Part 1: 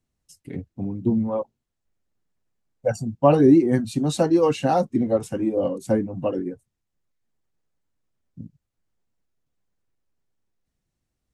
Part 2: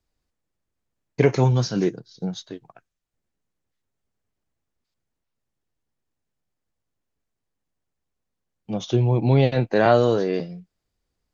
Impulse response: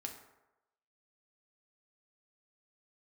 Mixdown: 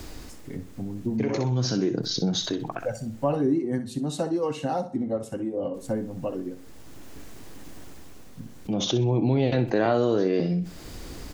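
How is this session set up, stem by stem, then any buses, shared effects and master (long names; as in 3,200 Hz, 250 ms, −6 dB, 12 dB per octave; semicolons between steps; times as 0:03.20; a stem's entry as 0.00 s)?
−2.5 dB, 0.00 s, send −11.5 dB, echo send −11 dB, notch filter 2,400 Hz
−1.0 dB, 0.00 s, muted 0:03.32–0:05.74, no send, echo send −13 dB, parametric band 300 Hz +7 dB 0.68 octaves; envelope flattener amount 70%; automatic ducking −7 dB, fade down 0.55 s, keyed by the first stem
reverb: on, RT60 0.95 s, pre-delay 4 ms
echo: repeating echo 63 ms, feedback 24%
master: downward compressor 1.5 to 1, threshold −35 dBFS, peak gain reduction 9.5 dB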